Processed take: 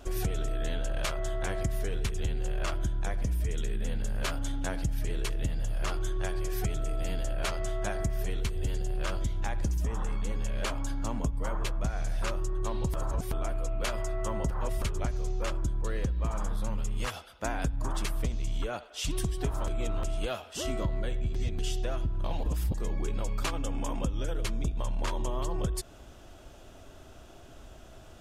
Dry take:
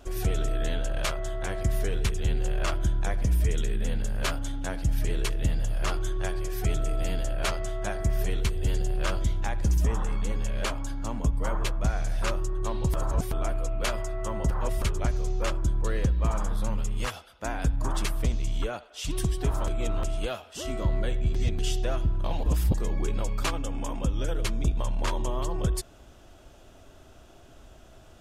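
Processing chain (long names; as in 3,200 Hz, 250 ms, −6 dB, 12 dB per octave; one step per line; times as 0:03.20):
downward compressor, threshold −28 dBFS, peak gain reduction 9.5 dB
level +1.5 dB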